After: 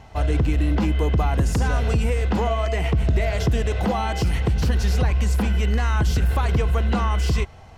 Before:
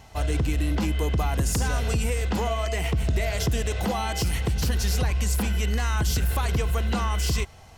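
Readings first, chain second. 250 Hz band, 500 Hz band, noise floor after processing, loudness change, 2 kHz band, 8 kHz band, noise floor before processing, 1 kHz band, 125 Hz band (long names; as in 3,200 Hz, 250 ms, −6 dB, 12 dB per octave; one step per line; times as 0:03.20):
+4.5 dB, +4.0 dB, −43 dBFS, +4.0 dB, +2.0 dB, −6.0 dB, −47 dBFS, +3.5 dB, +4.5 dB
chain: low-pass filter 2,100 Hz 6 dB per octave
level +4.5 dB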